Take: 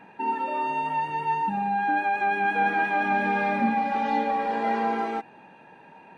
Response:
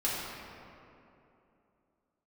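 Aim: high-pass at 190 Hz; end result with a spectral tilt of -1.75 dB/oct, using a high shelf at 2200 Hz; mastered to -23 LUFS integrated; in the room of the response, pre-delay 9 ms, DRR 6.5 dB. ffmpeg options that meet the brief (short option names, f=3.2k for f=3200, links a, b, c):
-filter_complex "[0:a]highpass=190,highshelf=f=2.2k:g=6,asplit=2[a][b];[1:a]atrim=start_sample=2205,adelay=9[c];[b][c]afir=irnorm=-1:irlink=0,volume=-14.5dB[d];[a][d]amix=inputs=2:normalize=0"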